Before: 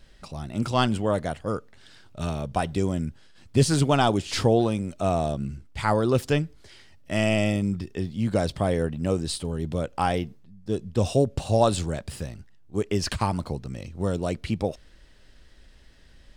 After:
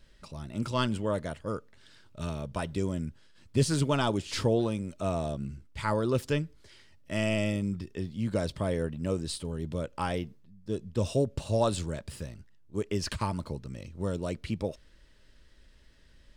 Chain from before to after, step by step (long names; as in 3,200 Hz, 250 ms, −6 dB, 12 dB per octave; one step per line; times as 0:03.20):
Butterworth band-reject 750 Hz, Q 5.9
level −5.5 dB